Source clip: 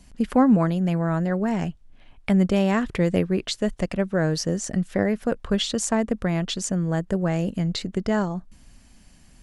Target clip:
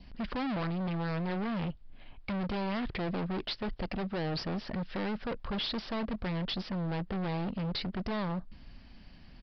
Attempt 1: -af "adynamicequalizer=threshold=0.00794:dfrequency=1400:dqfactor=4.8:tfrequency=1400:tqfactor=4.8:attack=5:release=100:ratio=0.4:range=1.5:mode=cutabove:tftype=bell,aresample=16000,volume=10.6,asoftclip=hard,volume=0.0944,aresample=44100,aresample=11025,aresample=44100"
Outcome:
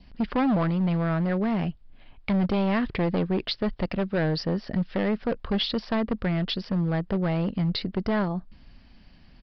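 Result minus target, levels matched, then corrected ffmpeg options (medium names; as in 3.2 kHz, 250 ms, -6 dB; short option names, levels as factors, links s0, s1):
overload inside the chain: distortion -6 dB
-af "adynamicequalizer=threshold=0.00794:dfrequency=1400:dqfactor=4.8:tfrequency=1400:tqfactor=4.8:attack=5:release=100:ratio=0.4:range=1.5:mode=cutabove:tftype=bell,aresample=16000,volume=39.8,asoftclip=hard,volume=0.0251,aresample=44100,aresample=11025,aresample=44100"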